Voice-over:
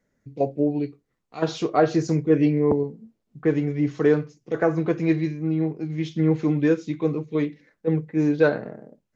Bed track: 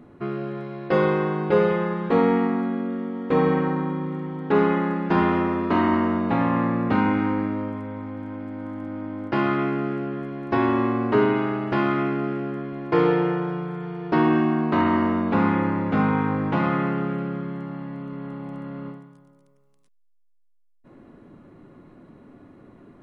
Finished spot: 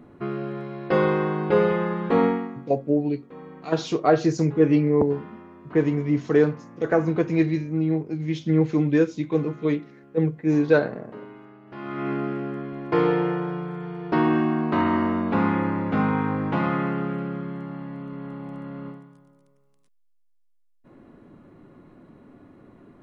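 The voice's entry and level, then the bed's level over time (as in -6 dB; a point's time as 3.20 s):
2.30 s, +0.5 dB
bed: 2.25 s -0.5 dB
2.72 s -22.5 dB
11.63 s -22.5 dB
12.11 s -1.5 dB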